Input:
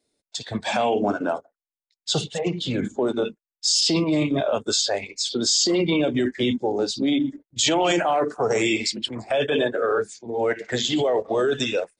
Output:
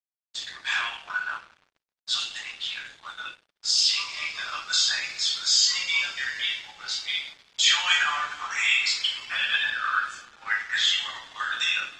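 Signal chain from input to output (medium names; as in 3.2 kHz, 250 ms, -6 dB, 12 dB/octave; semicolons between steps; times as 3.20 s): steep high-pass 1.2 kHz 36 dB/octave; two-slope reverb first 0.46 s, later 3.5 s, from -20 dB, DRR -7 dB; crossover distortion -39.5 dBFS; distance through air 120 m; Opus 20 kbps 48 kHz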